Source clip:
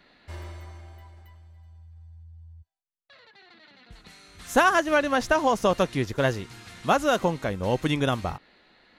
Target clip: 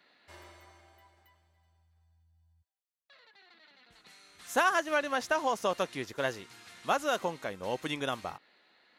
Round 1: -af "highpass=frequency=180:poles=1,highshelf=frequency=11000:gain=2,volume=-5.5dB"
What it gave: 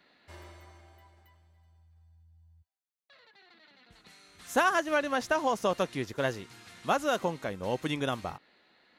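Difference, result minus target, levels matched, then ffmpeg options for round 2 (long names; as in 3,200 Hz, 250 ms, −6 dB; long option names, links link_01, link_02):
250 Hz band +3.5 dB
-af "highpass=frequency=500:poles=1,highshelf=frequency=11000:gain=2,volume=-5.5dB"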